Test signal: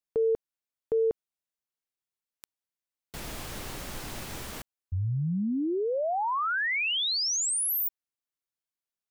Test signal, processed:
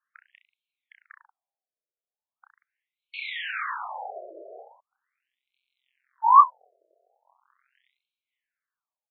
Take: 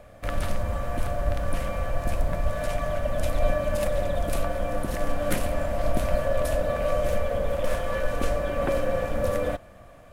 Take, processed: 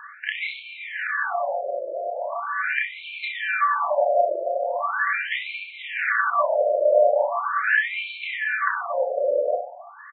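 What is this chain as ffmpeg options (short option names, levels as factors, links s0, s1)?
-filter_complex "[0:a]equalizer=f=1600:w=1:g=13,aphaser=in_gain=1:out_gain=1:delay=1.4:decay=0.51:speed=0.36:type=triangular,asplit=2[s0][s1];[s1]aecho=0:1:30|63|99.3|139.2|183.2:0.631|0.398|0.251|0.158|0.1[s2];[s0][s2]amix=inputs=2:normalize=0,afftfilt=real='re*between(b*sr/1024,480*pow(3100/480,0.5+0.5*sin(2*PI*0.4*pts/sr))/1.41,480*pow(3100/480,0.5+0.5*sin(2*PI*0.4*pts/sr))*1.41)':imag='im*between(b*sr/1024,480*pow(3100/480,0.5+0.5*sin(2*PI*0.4*pts/sr))/1.41,480*pow(3100/480,0.5+0.5*sin(2*PI*0.4*pts/sr))*1.41)':win_size=1024:overlap=0.75,volume=1.58"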